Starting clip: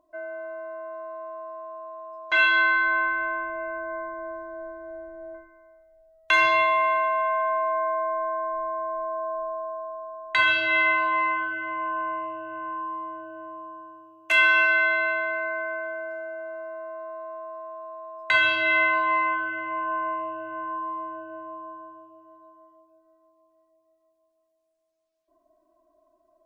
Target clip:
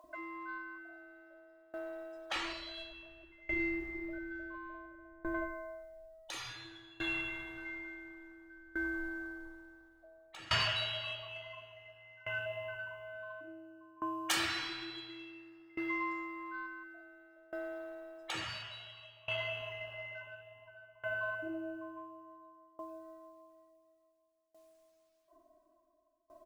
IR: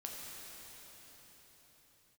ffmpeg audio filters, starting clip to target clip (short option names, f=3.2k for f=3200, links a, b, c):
-filter_complex "[0:a]acrossover=split=510[a][b];[a]adelay=40[c];[c][b]amix=inputs=2:normalize=0,afftfilt=real='re*lt(hypot(re,im),0.0501)':imag='im*lt(hypot(re,im),0.0501)':win_size=1024:overlap=0.75,asoftclip=type=tanh:threshold=-34.5dB,dynaudnorm=f=190:g=11:m=4.5dB,aeval=exprs='val(0)*pow(10,-24*if(lt(mod(0.57*n/s,1),2*abs(0.57)/1000),1-mod(0.57*n/s,1)/(2*abs(0.57)/1000),(mod(0.57*n/s,1)-2*abs(0.57)/1000)/(1-2*abs(0.57)/1000))/20)':c=same,volume=10.5dB"